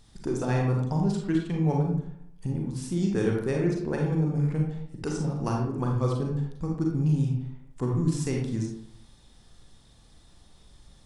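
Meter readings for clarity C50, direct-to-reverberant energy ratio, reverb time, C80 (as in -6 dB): 2.5 dB, -0.5 dB, 0.70 s, 6.5 dB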